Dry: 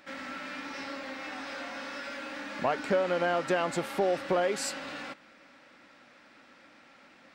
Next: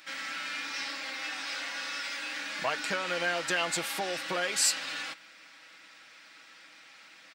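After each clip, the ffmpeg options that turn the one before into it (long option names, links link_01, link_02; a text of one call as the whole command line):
ffmpeg -i in.wav -af "tiltshelf=frequency=1300:gain=-10,aecho=1:1:6.2:0.52" out.wav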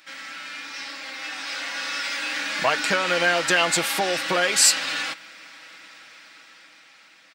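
ffmpeg -i in.wav -af "dynaudnorm=framelen=380:gausssize=9:maxgain=10dB" out.wav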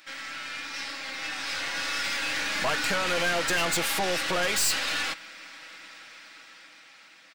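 ffmpeg -i in.wav -af "aeval=exprs='(tanh(17.8*val(0)+0.55)-tanh(0.55))/17.8':channel_layout=same,volume=2dB" out.wav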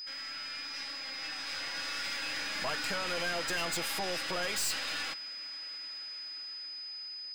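ffmpeg -i in.wav -af "aeval=exprs='val(0)+0.0251*sin(2*PI*5000*n/s)':channel_layout=same,volume=-8dB" out.wav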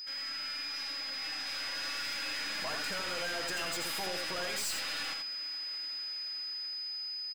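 ffmpeg -i in.wav -filter_complex "[0:a]asoftclip=type=tanh:threshold=-33dB,asplit=2[link_01][link_02];[link_02]aecho=0:1:83:0.596[link_03];[link_01][link_03]amix=inputs=2:normalize=0" out.wav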